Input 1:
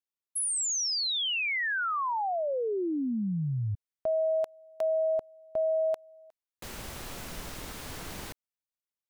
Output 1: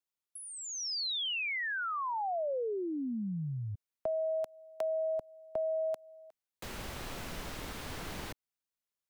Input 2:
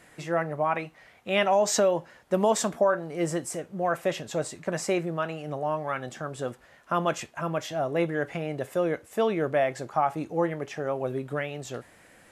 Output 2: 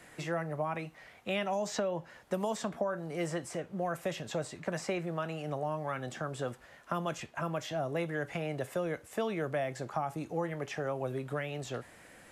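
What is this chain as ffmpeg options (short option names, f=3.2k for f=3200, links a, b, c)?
-filter_complex "[0:a]acrossover=split=220|490|4700[a][b][c][d];[a]acompressor=threshold=-39dB:ratio=4[e];[b]acompressor=threshold=-44dB:ratio=4[f];[c]acompressor=threshold=-35dB:ratio=4[g];[d]acompressor=threshold=-51dB:ratio=4[h];[e][f][g][h]amix=inputs=4:normalize=0"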